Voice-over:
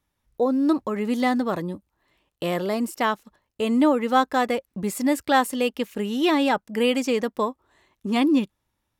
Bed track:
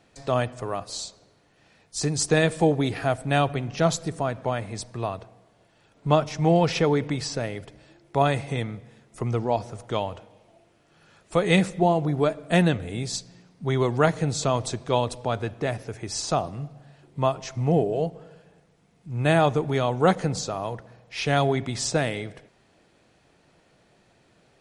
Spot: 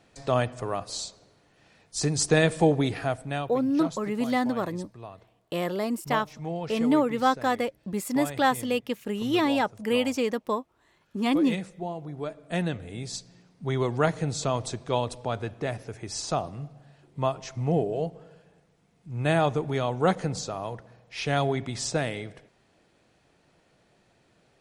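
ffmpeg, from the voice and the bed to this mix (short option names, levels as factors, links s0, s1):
-filter_complex "[0:a]adelay=3100,volume=0.668[s0];[1:a]volume=2.99,afade=t=out:st=2.8:d=0.7:silence=0.223872,afade=t=in:st=12.06:d=1.48:silence=0.316228[s1];[s0][s1]amix=inputs=2:normalize=0"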